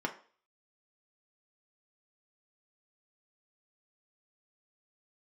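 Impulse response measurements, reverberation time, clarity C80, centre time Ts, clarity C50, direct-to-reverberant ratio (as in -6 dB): 0.45 s, 17.5 dB, 10 ms, 13.0 dB, 1.5 dB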